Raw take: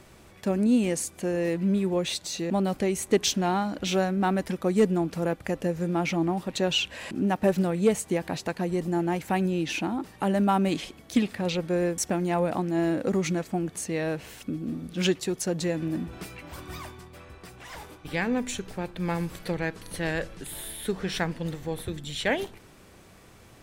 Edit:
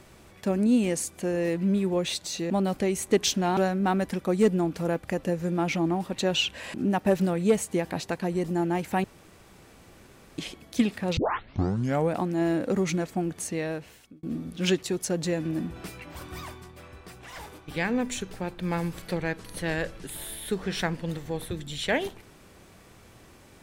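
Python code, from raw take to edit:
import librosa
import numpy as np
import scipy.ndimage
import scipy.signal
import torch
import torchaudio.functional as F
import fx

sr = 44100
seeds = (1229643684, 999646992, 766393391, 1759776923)

y = fx.edit(x, sr, fx.cut(start_s=3.57, length_s=0.37),
    fx.room_tone_fill(start_s=9.41, length_s=1.34),
    fx.tape_start(start_s=11.54, length_s=0.95),
    fx.fade_out_span(start_s=13.87, length_s=0.73), tone=tone)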